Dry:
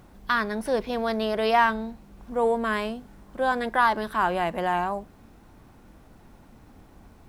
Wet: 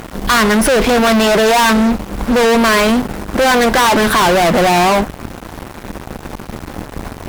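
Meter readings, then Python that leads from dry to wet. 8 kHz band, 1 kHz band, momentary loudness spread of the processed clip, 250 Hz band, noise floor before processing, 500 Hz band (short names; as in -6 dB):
n/a, +11.0 dB, 19 LU, +18.0 dB, -53 dBFS, +14.0 dB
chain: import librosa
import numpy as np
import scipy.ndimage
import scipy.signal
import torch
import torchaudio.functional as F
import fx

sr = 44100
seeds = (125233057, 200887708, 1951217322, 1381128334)

y = fx.fuzz(x, sr, gain_db=41.0, gate_db=-50.0)
y = fx.hum_notches(y, sr, base_hz=50, count=3)
y = F.gain(torch.from_numpy(y), 3.5).numpy()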